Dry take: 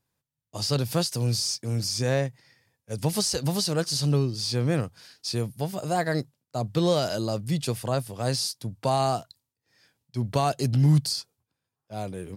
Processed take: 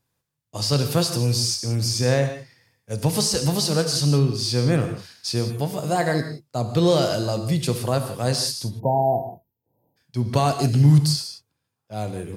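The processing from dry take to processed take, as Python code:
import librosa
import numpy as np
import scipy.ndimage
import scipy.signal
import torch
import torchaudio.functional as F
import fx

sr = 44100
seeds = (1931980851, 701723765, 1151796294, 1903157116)

y = fx.rev_gated(x, sr, seeds[0], gate_ms=200, shape='flat', drr_db=6.5)
y = fx.spec_erase(y, sr, start_s=8.8, length_s=1.17, low_hz=1000.0, high_hz=12000.0)
y = y * librosa.db_to_amplitude(3.5)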